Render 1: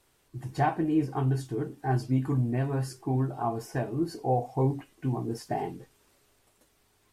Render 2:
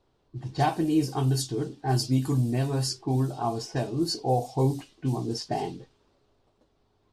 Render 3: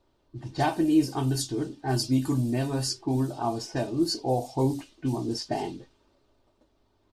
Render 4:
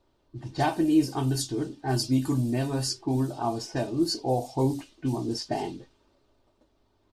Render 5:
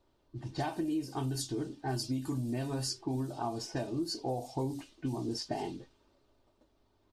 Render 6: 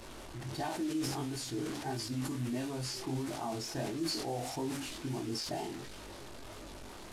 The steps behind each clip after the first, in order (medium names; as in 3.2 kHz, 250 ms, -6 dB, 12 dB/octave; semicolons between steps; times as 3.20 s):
level-controlled noise filter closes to 1.1 kHz, open at -23.5 dBFS; resonant high shelf 2.9 kHz +13 dB, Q 1.5; trim +2 dB
comb 3.3 ms, depth 38%
no audible change
compression 6:1, threshold -28 dBFS, peak gain reduction 11.5 dB; trim -3 dB
one-bit delta coder 64 kbps, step -39 dBFS; chorus 1.5 Hz, delay 18 ms, depth 7.9 ms; decay stretcher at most 32 dB/s